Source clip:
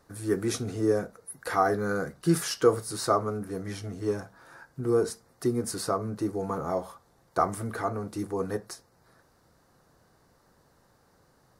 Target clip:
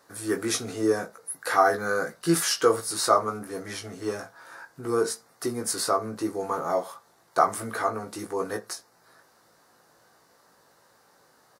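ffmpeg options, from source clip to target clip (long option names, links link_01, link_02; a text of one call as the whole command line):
ffmpeg -i in.wav -filter_complex "[0:a]highpass=frequency=650:poles=1,asplit=2[link_01][link_02];[link_02]adelay=18,volume=-4.5dB[link_03];[link_01][link_03]amix=inputs=2:normalize=0,volume=5.5dB" out.wav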